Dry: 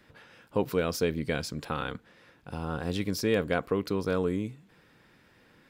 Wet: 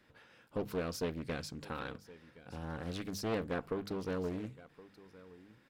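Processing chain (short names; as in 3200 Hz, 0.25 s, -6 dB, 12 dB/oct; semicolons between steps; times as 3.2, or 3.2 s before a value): one diode to ground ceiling -20 dBFS; notches 50/100/150/200 Hz; echo 1.069 s -19 dB; Doppler distortion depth 0.48 ms; gain -7 dB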